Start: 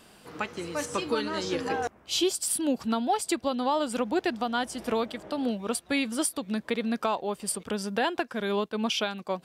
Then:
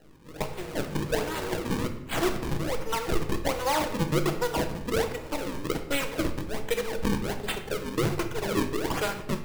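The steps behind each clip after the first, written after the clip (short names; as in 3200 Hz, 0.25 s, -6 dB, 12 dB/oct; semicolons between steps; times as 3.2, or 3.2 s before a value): minimum comb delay 2.1 ms; decimation with a swept rate 37×, swing 160% 1.3 Hz; shoebox room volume 260 m³, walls mixed, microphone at 0.61 m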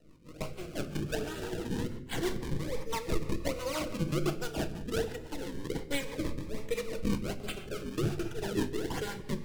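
high shelf 11000 Hz -4.5 dB; rotary speaker horn 6 Hz; cascading phaser rising 0.29 Hz; gain -2.5 dB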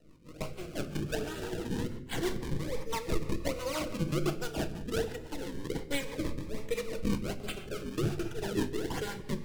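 nothing audible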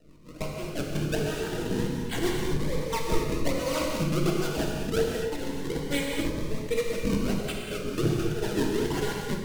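non-linear reverb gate 0.29 s flat, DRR 0 dB; gain +3 dB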